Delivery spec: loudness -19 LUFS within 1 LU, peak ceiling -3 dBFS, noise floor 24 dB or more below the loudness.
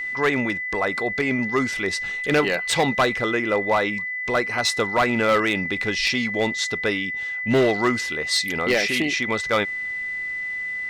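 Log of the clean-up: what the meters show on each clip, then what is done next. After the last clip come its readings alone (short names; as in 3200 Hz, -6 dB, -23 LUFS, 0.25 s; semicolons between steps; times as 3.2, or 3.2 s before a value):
clipped 1.0%; flat tops at -13.0 dBFS; steady tone 2000 Hz; tone level -26 dBFS; loudness -22.0 LUFS; peak -13.0 dBFS; loudness target -19.0 LUFS
-> clip repair -13 dBFS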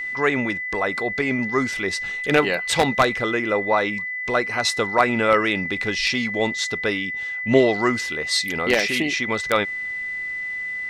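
clipped 0.0%; steady tone 2000 Hz; tone level -26 dBFS
-> notch 2000 Hz, Q 30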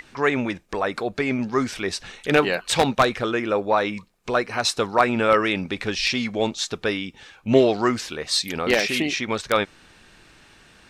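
steady tone none; loudness -22.5 LUFS; peak -3.5 dBFS; loudness target -19.0 LUFS
-> gain +3.5 dB; limiter -3 dBFS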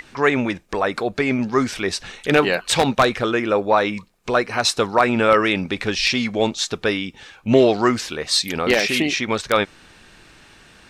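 loudness -19.5 LUFS; peak -3.0 dBFS; noise floor -49 dBFS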